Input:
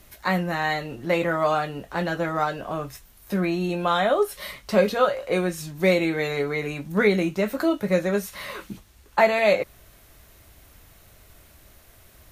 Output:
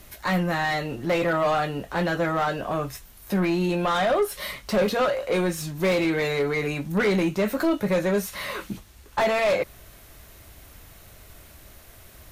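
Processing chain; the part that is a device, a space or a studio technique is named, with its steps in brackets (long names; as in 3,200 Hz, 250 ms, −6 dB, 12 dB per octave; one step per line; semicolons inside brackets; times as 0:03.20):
saturation between pre-emphasis and de-emphasis (high-shelf EQ 2,300 Hz +11 dB; soft clipping −20.5 dBFS, distortion −8 dB; high-shelf EQ 2,300 Hz −11 dB)
level +4 dB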